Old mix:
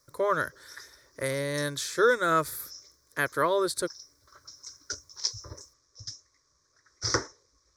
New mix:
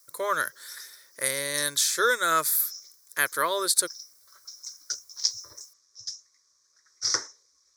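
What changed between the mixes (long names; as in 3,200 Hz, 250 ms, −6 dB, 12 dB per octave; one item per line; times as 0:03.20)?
background −5.5 dB
master: add spectral tilt +4 dB per octave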